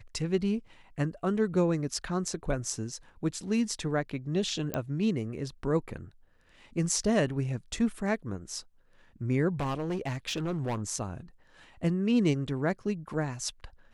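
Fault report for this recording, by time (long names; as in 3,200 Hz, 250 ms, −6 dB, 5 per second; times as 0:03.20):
0:04.74: click −15 dBFS
0:09.59–0:10.82: clipping −27.5 dBFS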